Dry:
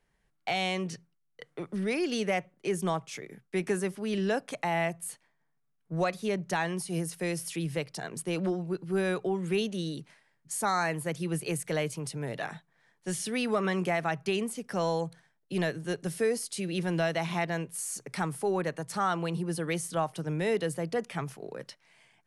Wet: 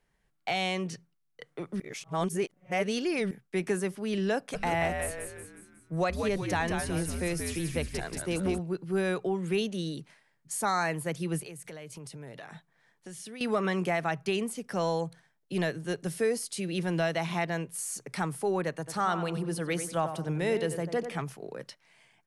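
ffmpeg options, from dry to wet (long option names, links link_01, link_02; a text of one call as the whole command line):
ffmpeg -i in.wav -filter_complex "[0:a]asplit=3[link_01][link_02][link_03];[link_01]afade=type=out:start_time=4.53:duration=0.02[link_04];[link_02]asplit=7[link_05][link_06][link_07][link_08][link_09][link_10][link_11];[link_06]adelay=182,afreqshift=-91,volume=-5dB[link_12];[link_07]adelay=364,afreqshift=-182,volume=-11.4dB[link_13];[link_08]adelay=546,afreqshift=-273,volume=-17.8dB[link_14];[link_09]adelay=728,afreqshift=-364,volume=-24.1dB[link_15];[link_10]adelay=910,afreqshift=-455,volume=-30.5dB[link_16];[link_11]adelay=1092,afreqshift=-546,volume=-36.9dB[link_17];[link_05][link_12][link_13][link_14][link_15][link_16][link_17]amix=inputs=7:normalize=0,afade=type=in:start_time=4.53:duration=0.02,afade=type=out:start_time=8.58:duration=0.02[link_18];[link_03]afade=type=in:start_time=8.58:duration=0.02[link_19];[link_04][link_18][link_19]amix=inputs=3:normalize=0,asettb=1/sr,asplit=3[link_20][link_21][link_22];[link_20]atrim=end=11.414[link_23];[link_21]atrim=start=11.41:end=13.41,asetpts=PTS-STARTPTS,afade=type=in:duration=0.004:curve=qsin,afade=type=out:start_time=1.996:duration=0.004:curve=qsin,acompressor=threshold=-40dB:ratio=10:attack=3.2:release=140:knee=1:detection=peak[link_24];[link_22]atrim=start=13.406[link_25];[link_23][link_24]acrossfade=duration=0.004:curve1=hsin:curve2=qsin[link_26];[link_26][link_25]acrossfade=duration=0.004:curve1=qsin:curve2=hsin,asettb=1/sr,asplit=3[link_27][link_28][link_29];[link_27]atrim=end=18.734[link_30];[link_28]atrim=start=18.73:end=21.22,asetpts=PTS-STARTPTS,afade=type=in:duration=0.004:curve=qsin,afade=type=out:start_time=2.486:duration=0.004:curve=qsin,asplit=2[link_31][link_32];[link_32]adelay=93,lowpass=frequency=2000:poles=1,volume=-8.5dB,asplit=2[link_33][link_34];[link_34]adelay=93,lowpass=frequency=2000:poles=1,volume=0.39,asplit=2[link_35][link_36];[link_36]adelay=93,lowpass=frequency=2000:poles=1,volume=0.39,asplit=2[link_37][link_38];[link_38]adelay=93,lowpass=frequency=2000:poles=1,volume=0.39[link_39];[link_31][link_33][link_35][link_37][link_39]amix=inputs=5:normalize=0,atrim=end_sample=109809[link_40];[link_29]atrim=start=21.216[link_41];[link_30][link_40]acrossfade=duration=0.004:curve1=hsin:curve2=qsin[link_42];[link_42][link_41]acrossfade=duration=0.004:curve1=qsin:curve2=hsin,asplit=3[link_43][link_44][link_45];[link_43]atrim=end=1.802[link_46];[link_44]atrim=start=1.798:end=3.312,asetpts=PTS-STARTPTS,areverse[link_47];[link_45]atrim=start=3.308[link_48];[link_46][link_47]acrossfade=duration=0.004:curve1=hsin:curve2=hsin[link_49];[link_49][link_48]acrossfade=duration=0.004:curve1=hsin:curve2=hsin" out.wav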